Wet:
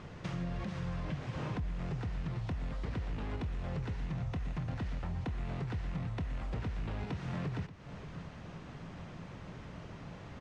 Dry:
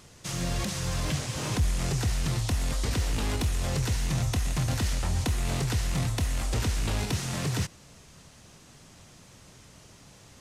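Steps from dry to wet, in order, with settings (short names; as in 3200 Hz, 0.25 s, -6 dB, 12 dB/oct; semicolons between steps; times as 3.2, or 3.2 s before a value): bell 170 Hz +6 dB 0.25 oct; compressor 10:1, threshold -40 dBFS, peak gain reduction 19 dB; LPF 2100 Hz 12 dB/oct; echo 0.581 s -14.5 dB; gain +6 dB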